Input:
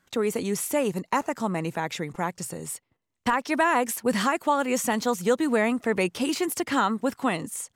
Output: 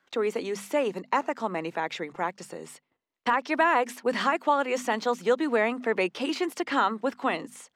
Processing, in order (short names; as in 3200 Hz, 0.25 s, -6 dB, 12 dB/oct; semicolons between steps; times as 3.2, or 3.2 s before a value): three-band isolator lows -17 dB, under 250 Hz, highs -17 dB, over 5100 Hz; notches 50/100/150/200/250 Hz